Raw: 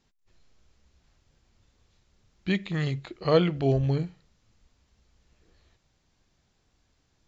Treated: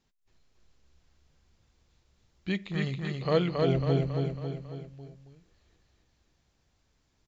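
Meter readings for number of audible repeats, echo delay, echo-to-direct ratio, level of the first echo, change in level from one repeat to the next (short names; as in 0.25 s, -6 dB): 5, 0.274 s, -1.5 dB, -3.0 dB, -5.5 dB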